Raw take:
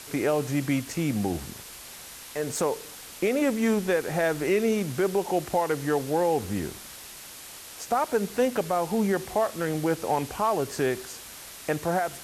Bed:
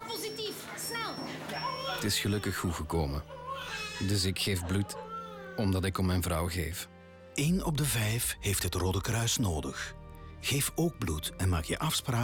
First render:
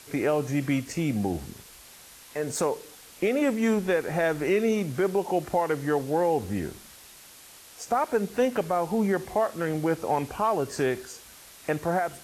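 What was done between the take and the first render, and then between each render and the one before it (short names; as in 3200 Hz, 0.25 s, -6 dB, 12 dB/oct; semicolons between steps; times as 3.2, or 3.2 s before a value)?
noise print and reduce 6 dB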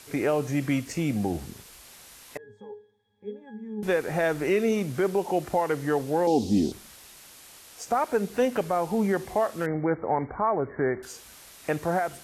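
2.37–3.83 octave resonator G#, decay 0.37 s; 6.27–6.72 EQ curve 160 Hz 0 dB, 240 Hz +13 dB, 490 Hz 0 dB, 770 Hz +2 dB, 1600 Hz -19 dB, 3500 Hz +9 dB, 5200 Hz +12 dB, 11000 Hz -4 dB; 9.66–11.03 brick-wall FIR low-pass 2300 Hz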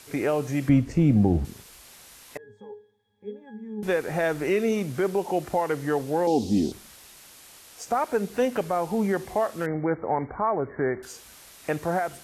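0.69–1.45 tilt -3.5 dB/oct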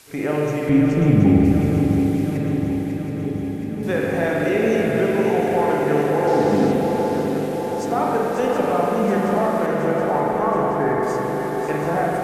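on a send: swung echo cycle 0.724 s, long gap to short 3:1, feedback 66%, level -7.5 dB; on the sum: spring tank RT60 3.3 s, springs 40/47 ms, chirp 35 ms, DRR -3.5 dB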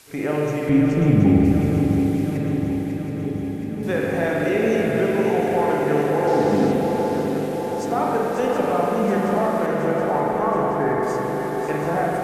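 gain -1 dB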